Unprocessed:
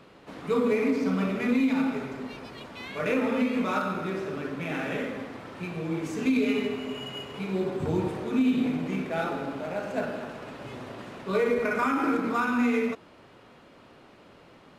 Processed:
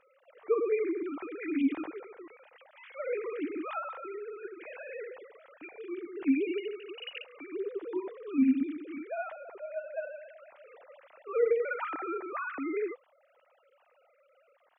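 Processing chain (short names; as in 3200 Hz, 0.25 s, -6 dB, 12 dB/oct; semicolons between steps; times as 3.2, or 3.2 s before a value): sine-wave speech; gain -6 dB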